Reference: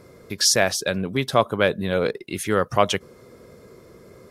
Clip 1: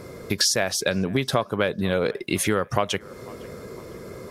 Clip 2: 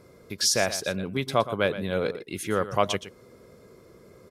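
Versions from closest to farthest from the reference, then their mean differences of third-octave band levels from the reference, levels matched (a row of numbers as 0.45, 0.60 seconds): 2, 1; 2.0, 6.0 decibels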